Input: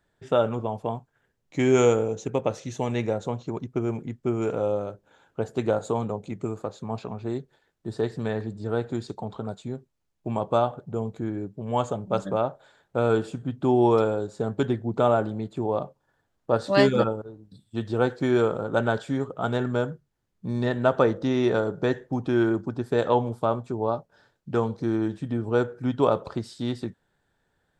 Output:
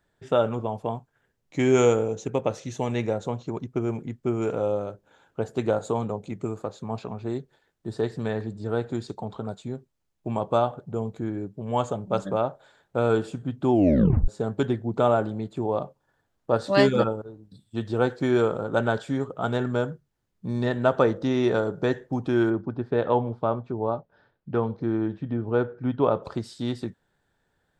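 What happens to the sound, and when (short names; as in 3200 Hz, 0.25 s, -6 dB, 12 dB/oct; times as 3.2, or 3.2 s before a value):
13.72 tape stop 0.56 s
22.5–26.23 air absorption 270 m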